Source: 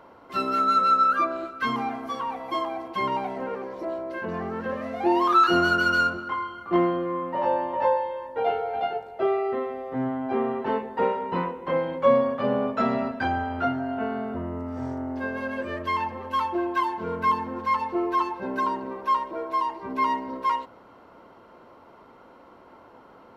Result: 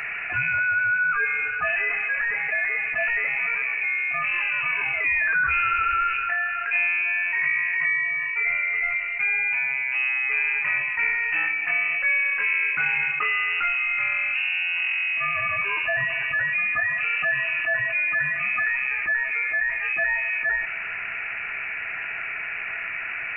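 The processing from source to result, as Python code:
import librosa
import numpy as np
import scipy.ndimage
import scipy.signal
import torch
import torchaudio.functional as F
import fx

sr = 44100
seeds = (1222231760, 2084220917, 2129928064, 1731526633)

y = fx.air_absorb(x, sr, metres=250.0, at=(7.5, 9.95))
y = fx.freq_invert(y, sr, carrier_hz=2800)
y = fx.comb_fb(y, sr, f0_hz=330.0, decay_s=0.21, harmonics='all', damping=0.0, mix_pct=50)
y = fx.env_flatten(y, sr, amount_pct=70)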